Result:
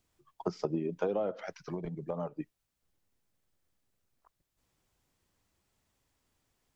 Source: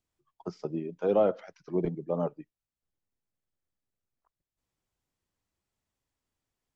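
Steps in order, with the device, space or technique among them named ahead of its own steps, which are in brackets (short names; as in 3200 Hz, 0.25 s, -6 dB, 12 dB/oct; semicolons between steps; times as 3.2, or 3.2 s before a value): serial compression, leveller first (compressor 2.5:1, threshold -28 dBFS, peak gain reduction 6.5 dB; compressor 10:1, threshold -37 dBFS, peak gain reduction 12.5 dB); 1.58–2.29 bell 320 Hz -9 dB 1.3 oct; gain +9 dB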